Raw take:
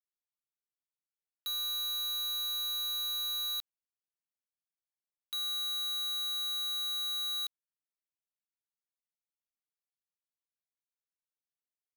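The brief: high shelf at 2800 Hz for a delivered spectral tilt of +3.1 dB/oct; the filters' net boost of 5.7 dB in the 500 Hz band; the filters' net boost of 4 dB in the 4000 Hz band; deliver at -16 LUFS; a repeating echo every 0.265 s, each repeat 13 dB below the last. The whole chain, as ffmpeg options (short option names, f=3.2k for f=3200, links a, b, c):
-af "equalizer=f=500:t=o:g=7.5,highshelf=f=2.8k:g=-4.5,equalizer=f=4k:t=o:g=7,aecho=1:1:265|530|795:0.224|0.0493|0.0108,volume=14dB"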